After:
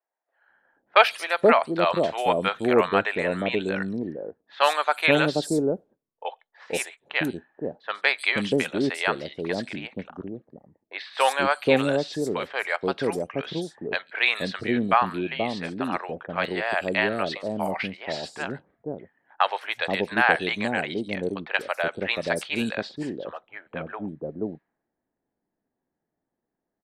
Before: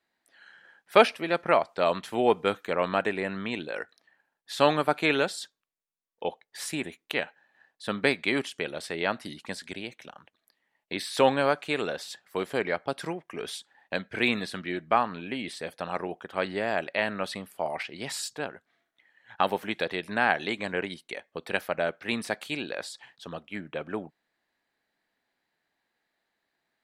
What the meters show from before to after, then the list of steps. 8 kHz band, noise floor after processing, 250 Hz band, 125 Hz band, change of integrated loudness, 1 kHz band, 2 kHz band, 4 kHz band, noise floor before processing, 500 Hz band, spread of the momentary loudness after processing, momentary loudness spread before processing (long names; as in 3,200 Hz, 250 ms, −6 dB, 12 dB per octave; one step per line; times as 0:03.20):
+0.5 dB, −84 dBFS, +5.0 dB, +5.5 dB, +4.0 dB, +4.0 dB, +5.0 dB, +4.0 dB, −82 dBFS, +3.0 dB, 16 LU, 14 LU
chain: three-band delay without the direct sound mids, highs, lows 140/480 ms, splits 600/5,700 Hz
low-pass that shuts in the quiet parts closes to 530 Hz, open at −27.5 dBFS
level +5.5 dB